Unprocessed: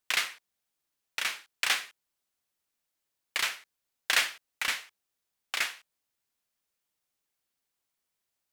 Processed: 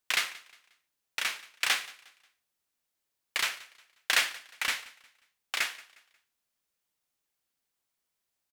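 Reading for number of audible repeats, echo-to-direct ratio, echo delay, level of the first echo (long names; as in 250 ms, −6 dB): 2, −20.5 dB, 179 ms, −21.0 dB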